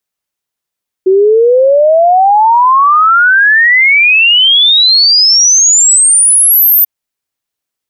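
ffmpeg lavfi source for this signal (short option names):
-f lavfi -i "aevalsrc='0.668*clip(min(t,5.79-t)/0.01,0,1)*sin(2*PI*370*5.79/log(14000/370)*(exp(log(14000/370)*t/5.79)-1))':d=5.79:s=44100"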